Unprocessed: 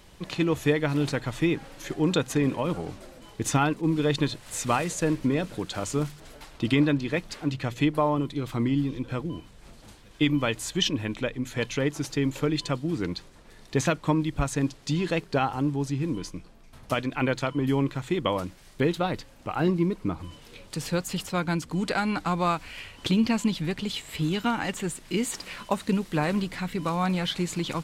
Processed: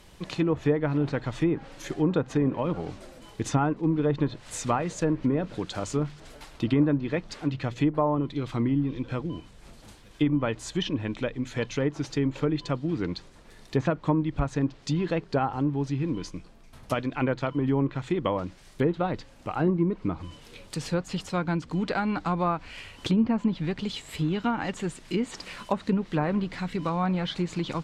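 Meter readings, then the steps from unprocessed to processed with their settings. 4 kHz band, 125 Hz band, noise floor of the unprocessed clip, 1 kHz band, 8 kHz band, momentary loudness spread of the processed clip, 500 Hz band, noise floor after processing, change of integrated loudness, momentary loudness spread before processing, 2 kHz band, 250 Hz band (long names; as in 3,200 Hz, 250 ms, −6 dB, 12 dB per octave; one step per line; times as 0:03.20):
−6.0 dB, 0.0 dB, −51 dBFS, −1.0 dB, −6.5 dB, 9 LU, 0.0 dB, −51 dBFS, −0.5 dB, 9 LU, −4.5 dB, 0.0 dB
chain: dynamic equaliser 2,500 Hz, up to −4 dB, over −40 dBFS, Q 0.91
treble cut that deepens with the level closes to 1,400 Hz, closed at −19.5 dBFS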